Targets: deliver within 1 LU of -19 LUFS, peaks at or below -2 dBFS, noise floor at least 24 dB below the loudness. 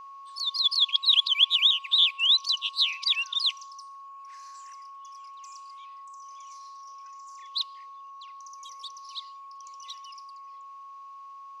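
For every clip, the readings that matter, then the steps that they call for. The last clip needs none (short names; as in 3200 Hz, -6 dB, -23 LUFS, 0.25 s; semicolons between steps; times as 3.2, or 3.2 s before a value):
steady tone 1100 Hz; tone level -42 dBFS; loudness -22.0 LUFS; peak -9.0 dBFS; loudness target -19.0 LUFS
-> notch 1100 Hz, Q 30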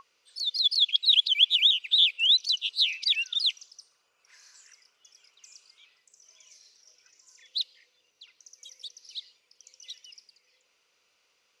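steady tone none; loudness -22.0 LUFS; peak -9.0 dBFS; loudness target -19.0 LUFS
-> gain +3 dB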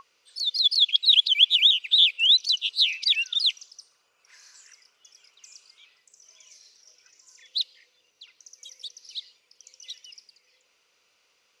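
loudness -19.0 LUFS; peak -6.0 dBFS; noise floor -69 dBFS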